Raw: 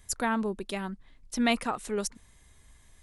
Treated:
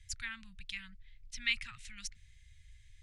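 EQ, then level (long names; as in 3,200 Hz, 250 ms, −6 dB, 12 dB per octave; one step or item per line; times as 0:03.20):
elliptic band-stop filter 110–2,100 Hz, stop band 80 dB
high-frequency loss of the air 110 metres
+1.0 dB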